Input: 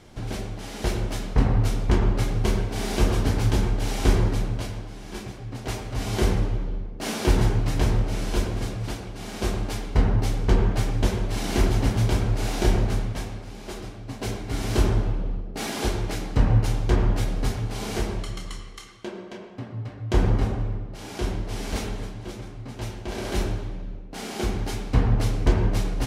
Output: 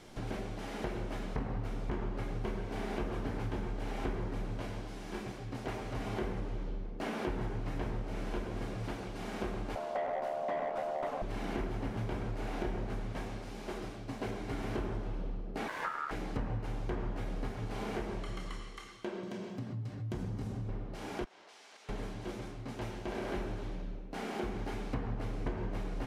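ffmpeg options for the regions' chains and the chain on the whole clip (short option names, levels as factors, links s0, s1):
-filter_complex "[0:a]asettb=1/sr,asplit=3[s0][s1][s2];[s0]atrim=end=9.754[s3];[s1]atrim=start=9.75:end=11.22,asetpts=PTS-STARTPTS,afade=t=in:d=0.004:c=qsin,afade=t=out:st=1.466:d=0.004:c=qsin,aeval=exprs='val(0)*sin(2*PI*650*n/s)':c=same,asoftclip=type=hard:threshold=0.0944[s4];[s2]atrim=start=11.216[s5];[s3][s4]acrossfade=d=0.004:c1=hsin:c2=qsin[s6];[s6][s5]acrossfade=d=0.004:c1=qsin:c2=hsin,asettb=1/sr,asplit=3[s7][s8][s9];[s7]atrim=end=15.684[s10];[s8]atrim=start=15.68:end=16.11,asetpts=PTS-STARTPTS,afade=t=in:d=0.004:c=qsin,afade=t=out:st=0.426:d=0.004:c=qsin,aeval=exprs='sgn(val(0))*max(abs(val(0))-0.00631,0)':c=same,aeval=exprs='val(0)*sin(2*PI*1300*n/s)':c=same[s11];[s9]atrim=start=16.106[s12];[s10][s11]acrossfade=d=0.004:c1=hsin:c2=qsin[s13];[s13][s12]acrossfade=d=0.004:c1=qsin:c2=hsin,asettb=1/sr,asplit=3[s14][s15][s16];[s14]atrim=end=19.234[s17];[s15]atrim=start=19.23:end=20.69,asetpts=PTS-STARTPTS,afade=t=in:d=0.004:c=qsin,afade=t=out:st=1.456:d=0.004:c=qsin,highpass=89,bass=f=250:g=14,treble=f=4000:g=10,acompressor=threshold=0.0178:ratio=2:attack=3.2:release=140:knee=1:detection=peak[s18];[s16]atrim=start=20.686[s19];[s17][s18]acrossfade=d=0.004:c1=hsin:c2=qsin[s20];[s20][s19]acrossfade=d=0.004:c1=qsin:c2=hsin,asettb=1/sr,asplit=3[s21][s22][s23];[s21]atrim=end=21.244[s24];[s22]atrim=start=21.24:end=21.89,asetpts=PTS-STARTPTS,afade=t=in:d=0.004:c=qsin,afade=t=out:st=0.646:d=0.004:c=qsin,agate=range=0.398:threshold=0.0562:ratio=16:release=100:detection=peak,highpass=770,lowpass=7500,acompressor=threshold=0.00316:ratio=10:attack=3.2:release=140:knee=1:detection=peak[s25];[s23]atrim=start=21.886[s26];[s24][s25]acrossfade=d=0.004:c1=hsin:c2=qsin[s27];[s27][s26]acrossfade=d=0.004:c1=qsin:c2=hsin,acrossover=split=2600[s28][s29];[s29]acompressor=threshold=0.00224:ratio=4:attack=1:release=60[s30];[s28][s30]amix=inputs=2:normalize=0,equalizer=f=72:t=o:w=1.5:g=-10.5,acompressor=threshold=0.0251:ratio=4,volume=0.794"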